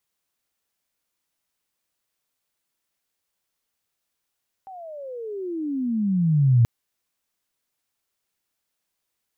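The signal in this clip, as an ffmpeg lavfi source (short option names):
-f lavfi -i "aevalsrc='pow(10,(-12+25*(t/1.98-1))/20)*sin(2*PI*785*1.98/(-33.5*log(2)/12)*(exp(-33.5*log(2)/12*t/1.98)-1))':d=1.98:s=44100"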